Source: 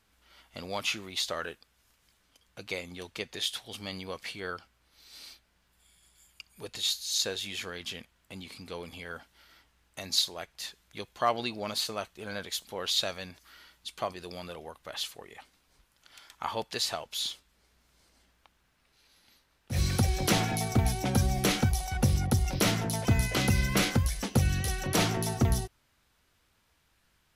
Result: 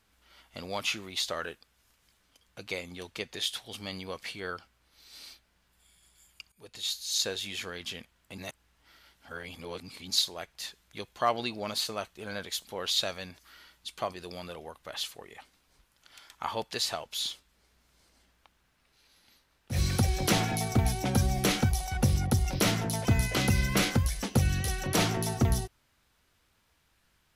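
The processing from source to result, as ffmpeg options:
ffmpeg -i in.wav -filter_complex "[0:a]asplit=4[link_01][link_02][link_03][link_04];[link_01]atrim=end=6.52,asetpts=PTS-STARTPTS,afade=type=out:start_time=6.516:duration=0.004:curve=hsin:silence=0.177828[link_05];[link_02]atrim=start=6.52:end=8.382,asetpts=PTS-STARTPTS,afade=type=in:duration=0.6:silence=0.177828[link_06];[link_03]atrim=start=8.378:end=10.102,asetpts=PTS-STARTPTS,areverse[link_07];[link_04]atrim=start=10.098[link_08];[link_05][link_06]concat=n=2:v=0:a=1[link_09];[link_09][link_07]acrossfade=duration=0.004:curve1=hsin:curve2=hsin[link_10];[link_10][link_08]acrossfade=duration=0.004:curve1=hsin:curve2=hsin" out.wav

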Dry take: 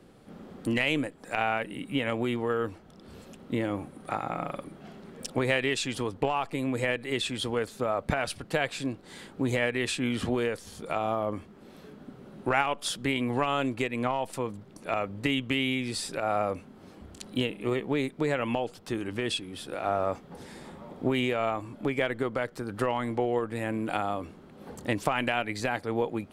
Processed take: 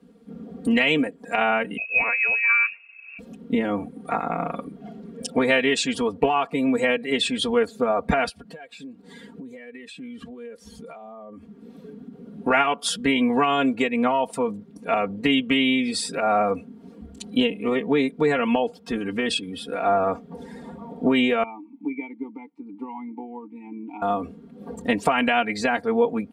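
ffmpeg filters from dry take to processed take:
ffmpeg -i in.wav -filter_complex "[0:a]asettb=1/sr,asplit=3[link_01][link_02][link_03];[link_01]atrim=end=1.774[link_04];[link_02]atrim=start=1.77:end=3.19,asetpts=PTS-STARTPTS,afade=type=in:duration=0.004:curve=qsin,afade=type=out:start_time=1.416:duration=0.004:curve=qsin,lowpass=frequency=2400:width_type=q:width=0.5098,lowpass=frequency=2400:width_type=q:width=0.6013,lowpass=frequency=2400:width_type=q:width=0.9,lowpass=frequency=2400:width_type=q:width=2.563,afreqshift=-2800[link_05];[link_03]atrim=start=3.186[link_06];[link_04][link_05]acrossfade=duration=0.004:curve1=hsin:curve2=qsin[link_07];[link_07][link_06]acrossfade=duration=0.004:curve1=qsin:curve2=hsin,asplit=3[link_08][link_09][link_10];[link_08]afade=type=out:start_time=8.28:duration=0.02[link_11];[link_09]acompressor=threshold=-42dB:ratio=10:attack=3.2:release=140:knee=1:detection=peak,afade=type=in:start_time=8.28:duration=0.02,afade=type=out:start_time=12.26:duration=0.02[link_12];[link_10]afade=type=in:start_time=12.26:duration=0.02[link_13];[link_11][link_12][link_13]amix=inputs=3:normalize=0,asettb=1/sr,asplit=3[link_14][link_15][link_16];[link_14]atrim=end=21.434[link_17];[link_15]atrim=start=21.43:end=24.02,asetpts=PTS-STARTPTS,afade=type=in:duration=0.004:curve=qsin,afade=type=out:start_time=2.586:duration=0.004:curve=qsin,asplit=3[link_18][link_19][link_20];[link_18]bandpass=frequency=300:width_type=q:width=8,volume=0dB[link_21];[link_19]bandpass=frequency=870:width_type=q:width=8,volume=-6dB[link_22];[link_20]bandpass=frequency=2240:width_type=q:width=8,volume=-9dB[link_23];[link_21][link_22][link_23]amix=inputs=3:normalize=0[link_24];[link_16]atrim=start=24.016[link_25];[link_17][link_24]acrossfade=duration=0.004:curve1=hsin:curve2=qsin[link_26];[link_26][link_25]acrossfade=duration=0.004:curve1=qsin:curve2=hsin,highpass=43,aecho=1:1:4.3:0.89,afftdn=noise_reduction=13:noise_floor=-42,volume=4.5dB" out.wav

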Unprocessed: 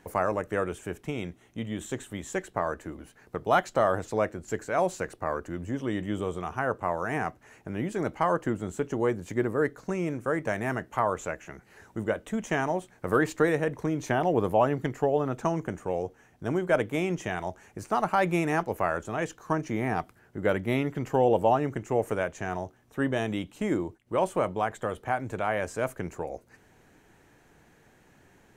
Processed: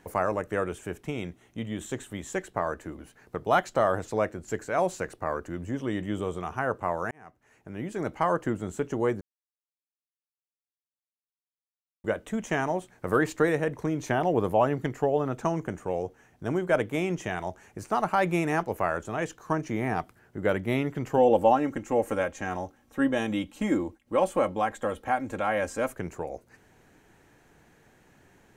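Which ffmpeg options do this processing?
ffmpeg -i in.wav -filter_complex "[0:a]asettb=1/sr,asplit=3[link_01][link_02][link_03];[link_01]atrim=end=21.174[link_04];[link_02]atrim=start=21.17:end=25.92,asetpts=PTS-STARTPTS,afade=type=in:duration=0.004:curve=qsin,afade=type=out:start_time=4.746:duration=0.004:curve=qsin,aecho=1:1:3.7:0.65,atrim=end_sample=209475[link_05];[link_03]atrim=start=25.916[link_06];[link_04][link_05]acrossfade=duration=0.004:curve1=hsin:curve2=qsin[link_07];[link_07][link_06]acrossfade=duration=0.004:curve1=qsin:curve2=hsin,asplit=4[link_08][link_09][link_10][link_11];[link_08]atrim=end=7.11,asetpts=PTS-STARTPTS,afade=type=out:start_time=7.106:duration=0.004:curve=hsin[link_12];[link_09]atrim=start=7.11:end=9.21,asetpts=PTS-STARTPTS,afade=type=in:duration=1.1,afade=type=out:start_time=2.096:duration=0.004:curve=hsin[link_13];[link_10]atrim=start=9.21:end=12.04,asetpts=PTS-STARTPTS,volume=0[link_14];[link_11]atrim=start=12.04,asetpts=PTS-STARTPTS,afade=type=in:duration=0.004:curve=hsin[link_15];[link_12][link_13][link_14][link_15]concat=n=4:v=0:a=1" out.wav

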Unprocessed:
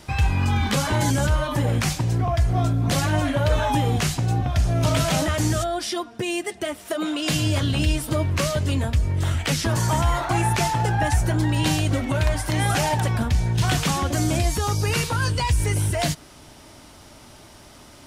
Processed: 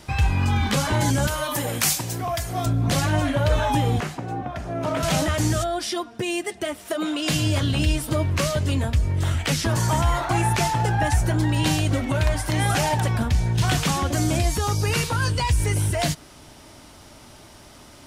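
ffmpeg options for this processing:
ffmpeg -i in.wav -filter_complex "[0:a]asettb=1/sr,asplit=3[link_01][link_02][link_03];[link_01]atrim=end=1.274[link_04];[link_02]atrim=start=1.27:end=2.66,asetpts=PTS-STARTPTS,afade=type=in:duration=0.004:curve=qsin,afade=type=out:start_time=1.386:duration=0.004:curve=qsin,aemphasis=mode=production:type=bsi[link_05];[link_03]atrim=start=2.656[link_06];[link_04][link_05]acrossfade=duration=0.004:curve1=hsin:curve2=qsin[link_07];[link_07][link_06]acrossfade=duration=0.004:curve1=qsin:curve2=hsin,asettb=1/sr,asplit=3[link_08][link_09][link_10];[link_08]atrim=end=4.004[link_11];[link_09]atrim=start=4:end=5.03,asetpts=PTS-STARTPTS,afade=type=in:duration=0.004:curve=qsin,afade=type=out:start_time=1.026:duration=0.004:curve=qsin,acrossover=split=190 2100:gain=0.141 1 0.2[link_12][link_13][link_14];[link_12][link_13][link_14]amix=inputs=3:normalize=0[link_15];[link_10]atrim=start=5.026[link_16];[link_11][link_15]acrossfade=duration=0.004:curve1=hsin:curve2=qsin[link_17];[link_17][link_16]acrossfade=duration=0.004:curve1=qsin:curve2=hsin" out.wav

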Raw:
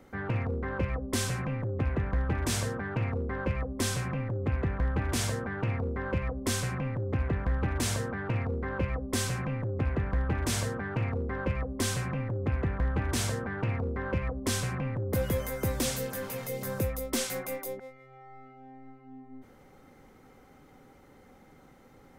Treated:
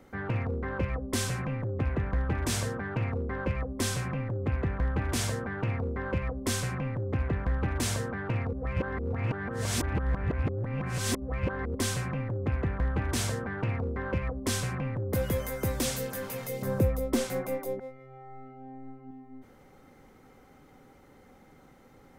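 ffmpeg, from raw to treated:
ffmpeg -i in.wav -filter_complex "[0:a]asettb=1/sr,asplit=3[link_01][link_02][link_03];[link_01]atrim=end=16.624[link_04];[link_02]atrim=start=16.62:end=19.11,asetpts=PTS-STARTPTS,afade=type=in:duration=0.004:curve=qsin,afade=type=out:start_time=2.486:duration=0.004:curve=qsin,tiltshelf=frequency=1300:gain=6[link_05];[link_03]atrim=start=19.106[link_06];[link_04][link_05]acrossfade=duration=0.004:curve1=hsin:curve2=qsin[link_07];[link_07][link_06]acrossfade=duration=0.004:curve1=qsin:curve2=hsin,asplit=3[link_08][link_09][link_10];[link_08]atrim=end=8.532[link_11];[link_09]atrim=start=8.528:end=11.752,asetpts=PTS-STARTPTS,areverse[link_12];[link_10]atrim=start=11.748[link_13];[link_11][link_12]acrossfade=duration=0.004:curve1=hsin:curve2=hsin[link_14];[link_14][link_13]acrossfade=duration=0.004:curve1=hsin:curve2=hsin" out.wav

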